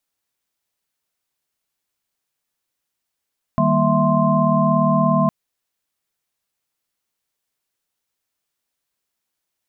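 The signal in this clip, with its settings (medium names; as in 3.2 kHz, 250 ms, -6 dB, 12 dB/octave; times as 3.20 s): chord D#3/G3/A#3/E5/C6 sine, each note -20 dBFS 1.71 s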